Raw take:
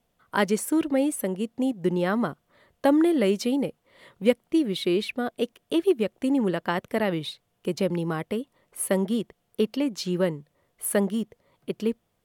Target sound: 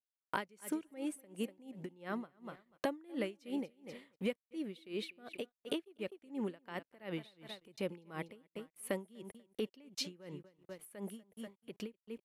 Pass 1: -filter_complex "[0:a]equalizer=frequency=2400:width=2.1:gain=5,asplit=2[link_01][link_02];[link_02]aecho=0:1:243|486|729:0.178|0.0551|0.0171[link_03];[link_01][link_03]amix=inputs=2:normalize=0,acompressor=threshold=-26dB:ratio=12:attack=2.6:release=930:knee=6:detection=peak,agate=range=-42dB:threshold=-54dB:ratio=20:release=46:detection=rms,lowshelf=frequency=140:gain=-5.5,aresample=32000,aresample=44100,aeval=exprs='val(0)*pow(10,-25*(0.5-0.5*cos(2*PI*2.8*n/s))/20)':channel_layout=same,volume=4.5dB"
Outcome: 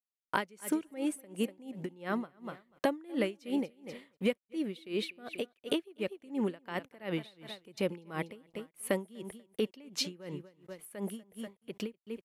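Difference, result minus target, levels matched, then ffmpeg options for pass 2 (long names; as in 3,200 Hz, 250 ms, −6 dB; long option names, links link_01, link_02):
downward compressor: peak gain reduction −6.5 dB
-filter_complex "[0:a]equalizer=frequency=2400:width=2.1:gain=5,asplit=2[link_01][link_02];[link_02]aecho=0:1:243|486|729:0.178|0.0551|0.0171[link_03];[link_01][link_03]amix=inputs=2:normalize=0,acompressor=threshold=-33dB:ratio=12:attack=2.6:release=930:knee=6:detection=peak,agate=range=-42dB:threshold=-54dB:ratio=20:release=46:detection=rms,lowshelf=frequency=140:gain=-5.5,aresample=32000,aresample=44100,aeval=exprs='val(0)*pow(10,-25*(0.5-0.5*cos(2*PI*2.8*n/s))/20)':channel_layout=same,volume=4.5dB"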